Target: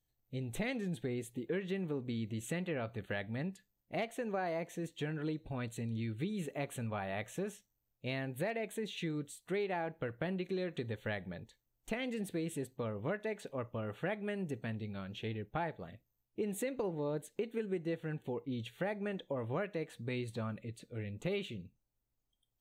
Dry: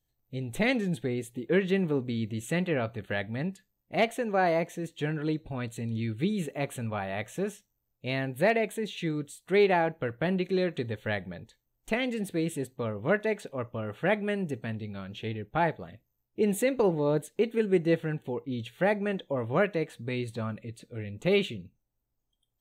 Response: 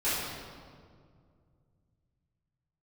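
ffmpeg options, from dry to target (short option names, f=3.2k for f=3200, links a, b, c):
-af "acompressor=threshold=-30dB:ratio=5,volume=-4dB"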